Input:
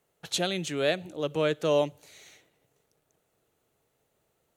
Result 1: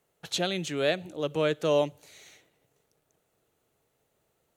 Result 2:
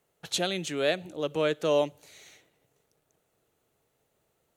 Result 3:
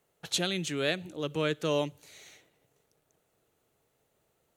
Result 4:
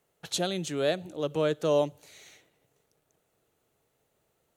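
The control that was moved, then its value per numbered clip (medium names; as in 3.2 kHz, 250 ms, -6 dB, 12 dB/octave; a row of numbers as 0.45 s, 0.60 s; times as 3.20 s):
dynamic bell, frequency: 9.7 kHz, 110 Hz, 650 Hz, 2.3 kHz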